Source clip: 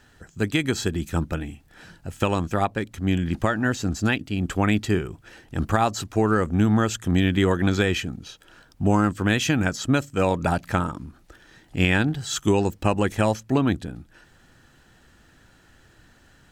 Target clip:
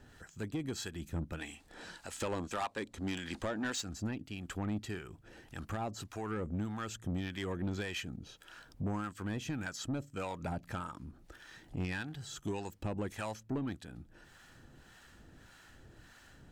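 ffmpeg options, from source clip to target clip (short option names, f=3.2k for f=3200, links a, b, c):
-filter_complex "[0:a]asplit=3[a][b][c];[a]afade=t=out:st=1.38:d=0.02[d];[b]equalizer=f=125:t=o:w=1:g=-8,equalizer=f=250:t=o:w=1:g=4,equalizer=f=500:t=o:w=1:g=6,equalizer=f=1k:t=o:w=1:g=8,equalizer=f=2k:t=o:w=1:g=5,equalizer=f=4k:t=o:w=1:g=9,equalizer=f=8k:t=o:w=1:g=10,afade=t=in:st=1.38:d=0.02,afade=t=out:st=3.8:d=0.02[e];[c]afade=t=in:st=3.8:d=0.02[f];[d][e][f]amix=inputs=3:normalize=0,acompressor=threshold=-51dB:ratio=1.5,acrossover=split=740[g][h];[g]aeval=exprs='val(0)*(1-0.7/2+0.7/2*cos(2*PI*1.7*n/s))':c=same[i];[h]aeval=exprs='val(0)*(1-0.7/2-0.7/2*cos(2*PI*1.7*n/s))':c=same[j];[i][j]amix=inputs=2:normalize=0,asoftclip=type=tanh:threshold=-30.5dB,volume=1dB"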